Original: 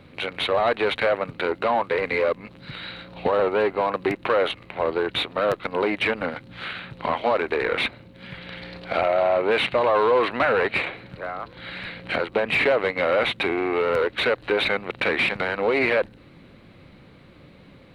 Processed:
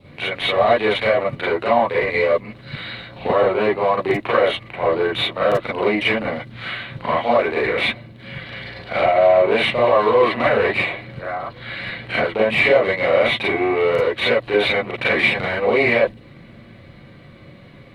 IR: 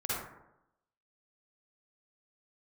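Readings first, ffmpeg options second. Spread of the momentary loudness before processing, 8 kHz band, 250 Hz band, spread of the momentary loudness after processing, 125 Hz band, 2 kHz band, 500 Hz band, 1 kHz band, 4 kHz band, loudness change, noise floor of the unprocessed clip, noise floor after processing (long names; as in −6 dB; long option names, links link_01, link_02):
14 LU, can't be measured, +4.5 dB, 14 LU, +7.5 dB, +4.5 dB, +5.0 dB, +4.0 dB, +4.5 dB, +4.5 dB, −49 dBFS, −44 dBFS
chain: -filter_complex "[0:a]adynamicequalizer=threshold=0.00794:dfrequency=1500:dqfactor=3:tfrequency=1500:tqfactor=3:attack=5:release=100:ratio=0.375:range=3.5:mode=cutabove:tftype=bell[link_01];[1:a]atrim=start_sample=2205,atrim=end_sample=3528,asetrate=61740,aresample=44100[link_02];[link_01][link_02]afir=irnorm=-1:irlink=0,volume=4.5dB"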